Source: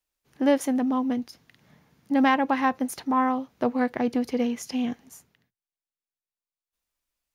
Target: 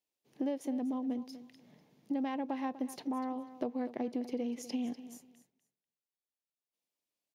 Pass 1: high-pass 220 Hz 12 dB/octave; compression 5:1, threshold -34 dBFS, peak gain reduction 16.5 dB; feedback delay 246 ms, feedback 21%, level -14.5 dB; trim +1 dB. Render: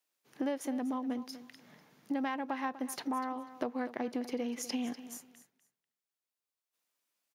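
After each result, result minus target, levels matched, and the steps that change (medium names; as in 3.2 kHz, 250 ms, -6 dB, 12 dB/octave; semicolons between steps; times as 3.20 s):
8 kHz band +7.0 dB; 1 kHz band +3.5 dB
add after compression: treble shelf 4.1 kHz -10 dB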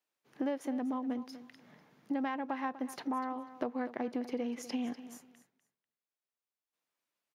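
1 kHz band +3.0 dB
add after high-pass: peaking EQ 1.4 kHz -14 dB 1.2 oct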